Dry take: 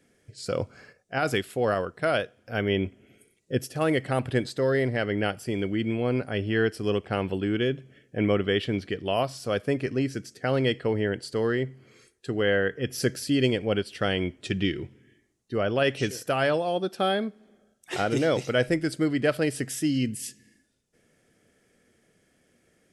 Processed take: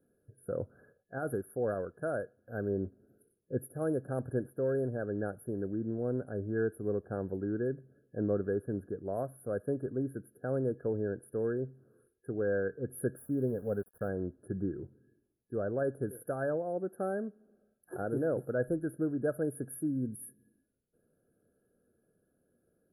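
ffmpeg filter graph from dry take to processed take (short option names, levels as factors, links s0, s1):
-filter_complex "[0:a]asettb=1/sr,asplit=3[s0][s1][s2];[s0]atrim=end=13.174[s3];[s1]atrim=start=13.17:end=14.09,asetpts=PTS-STARTPTS,afade=t=in:d=0.004:c=qsin,afade=t=out:st=0.916:d=0.004:c=qsin,highshelf=f=2700:g=-6.5,bandreject=f=330:w=5.3,aeval=exprs='val(0)*gte(abs(val(0)),0.00841)':c=same[s4];[s2]atrim=start=14.086[s5];[s3][s4]acrossfade=d=0.004:c1=hsin:c2=qsin[s6];[s6][s5]acrossfade=d=0.004:c1=qsin:c2=hsin,afftfilt=real='re*(1-between(b*sr/4096,1700,9700))':imag='im*(1-between(b*sr/4096,1700,9700))':win_size=4096:overlap=0.75,equalizer=f=500:t=o:w=1:g=4,equalizer=f=1000:t=o:w=1:g=-11,equalizer=f=8000:t=o:w=1:g=4,volume=0.398"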